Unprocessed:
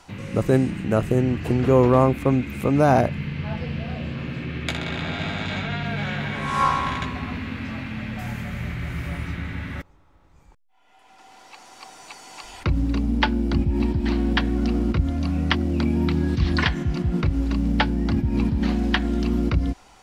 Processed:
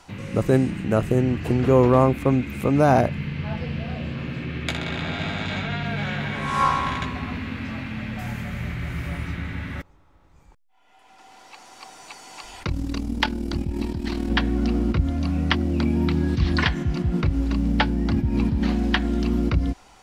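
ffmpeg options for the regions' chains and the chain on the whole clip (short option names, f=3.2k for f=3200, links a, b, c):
-filter_complex "[0:a]asettb=1/sr,asplit=3[a][b][c];[a]atrim=end=12.644[d];[b]atrim=start=12.64:end=14.3,asetpts=PTS-STARTPTS,afade=t=in:d=0.004:c=qsin,afade=t=out:st=1.656:d=0.004:c=qsin,bass=f=250:g=-3,treble=f=4k:g=9,tremolo=f=39:d=0.667,volume=7.5dB,asoftclip=hard,volume=-7.5dB[e];[c]atrim=start=14.296[f];[d][e]acrossfade=d=0.004:c1=hsin:c2=qsin[g];[g][f]acrossfade=d=0.004:c1=qsin:c2=hsin"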